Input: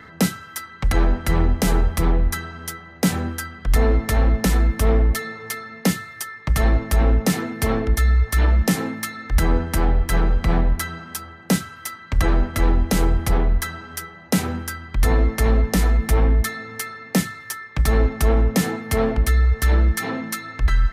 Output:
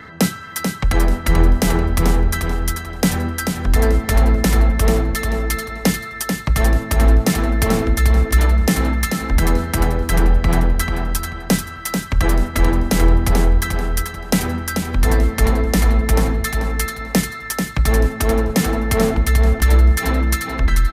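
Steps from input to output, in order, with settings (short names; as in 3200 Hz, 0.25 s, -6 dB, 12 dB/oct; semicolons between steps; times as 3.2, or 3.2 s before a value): in parallel at -2 dB: compressor, threshold -23 dBFS, peak gain reduction 11 dB; on the sum: feedback echo 0.438 s, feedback 26%, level -5.5 dB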